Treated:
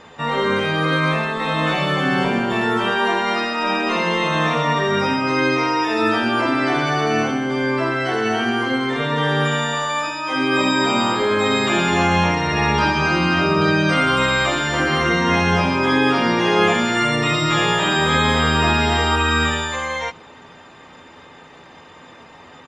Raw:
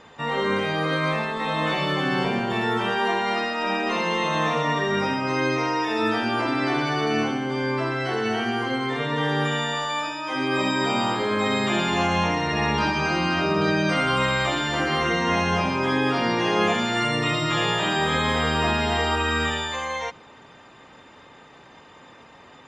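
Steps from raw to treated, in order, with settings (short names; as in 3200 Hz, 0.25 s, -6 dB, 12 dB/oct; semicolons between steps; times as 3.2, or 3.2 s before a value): doubler 12 ms -9 dB; gain +4.5 dB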